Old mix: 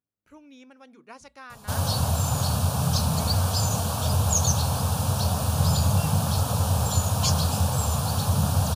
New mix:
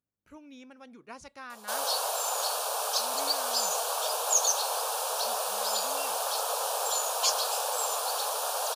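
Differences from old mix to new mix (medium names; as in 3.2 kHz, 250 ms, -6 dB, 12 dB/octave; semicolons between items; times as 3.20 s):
background: add steep high-pass 430 Hz 72 dB/octave; master: remove hum notches 60/120/180/240 Hz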